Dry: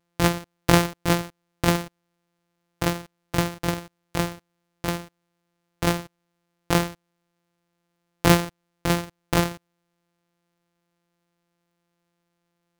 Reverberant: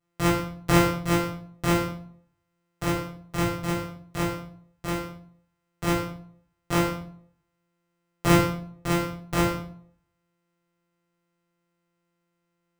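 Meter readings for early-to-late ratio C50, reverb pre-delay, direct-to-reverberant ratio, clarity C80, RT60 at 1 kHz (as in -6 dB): 5.0 dB, 4 ms, -7.5 dB, 8.5 dB, 0.60 s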